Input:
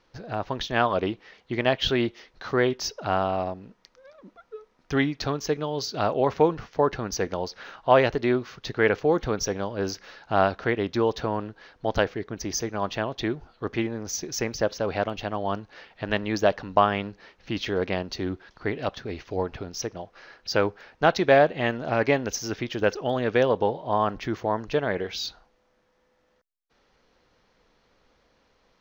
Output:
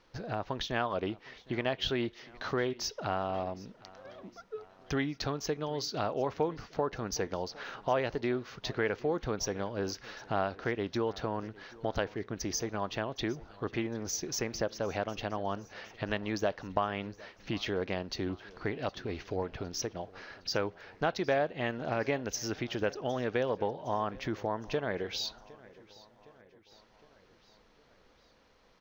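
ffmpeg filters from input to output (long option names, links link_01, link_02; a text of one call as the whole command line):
ffmpeg -i in.wav -filter_complex "[0:a]acompressor=threshold=-35dB:ratio=2,asplit=2[link_01][link_02];[link_02]aecho=0:1:761|1522|2283|3044:0.0794|0.0461|0.0267|0.0155[link_03];[link_01][link_03]amix=inputs=2:normalize=0" out.wav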